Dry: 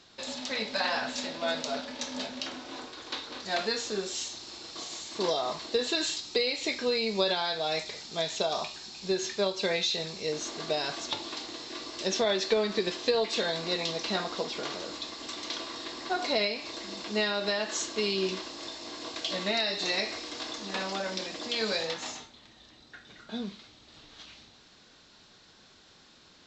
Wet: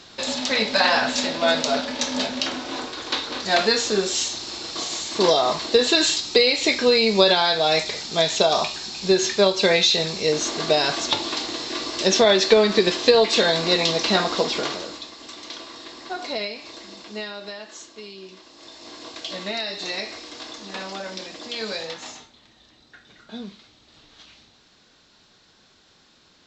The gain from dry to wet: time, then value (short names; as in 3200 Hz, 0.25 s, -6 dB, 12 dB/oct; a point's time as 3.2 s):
14.56 s +11 dB
15.1 s -0.5 dB
16.76 s -0.5 dB
18.28 s -12 dB
18.88 s +0.5 dB